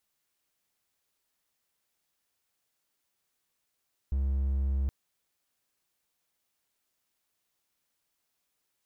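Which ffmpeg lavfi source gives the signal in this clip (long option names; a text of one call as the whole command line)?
ffmpeg -f lavfi -i "aevalsrc='0.0668*(1-4*abs(mod(67.7*t+0.25,1)-0.5))':duration=0.77:sample_rate=44100" out.wav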